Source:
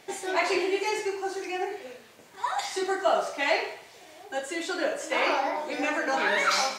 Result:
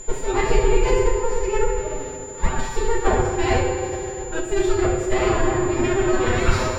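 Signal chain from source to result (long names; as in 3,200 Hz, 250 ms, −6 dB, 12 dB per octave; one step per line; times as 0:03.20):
lower of the sound and its delayed copy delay 9.3 ms
in parallel at −1 dB: downward compressor, threshold −35 dBFS, peak gain reduction 13.5 dB
on the sum: mains-hum notches 50/100/150 Hz
reversed playback
upward compression, threshold −34 dBFS
reversed playback
parametric band 340 Hz +7.5 dB 0.58 octaves
feedback delay network reverb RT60 2.9 s, high-frequency decay 0.6×, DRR 3 dB
phase-vocoder pitch shift with formants kept +3 semitones
steady tone 7,100 Hz −26 dBFS
RIAA equalisation playback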